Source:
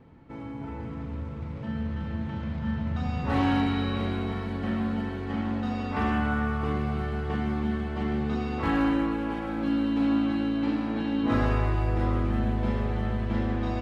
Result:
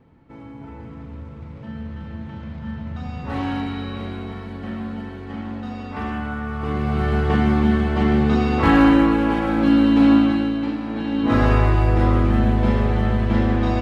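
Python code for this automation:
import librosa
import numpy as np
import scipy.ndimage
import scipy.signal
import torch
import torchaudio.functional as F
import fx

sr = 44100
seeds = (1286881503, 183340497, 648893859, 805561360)

y = fx.gain(x, sr, db=fx.line((6.43, -1.0), (7.13, 11.0), (10.13, 11.0), (10.78, 1.0), (11.54, 9.0)))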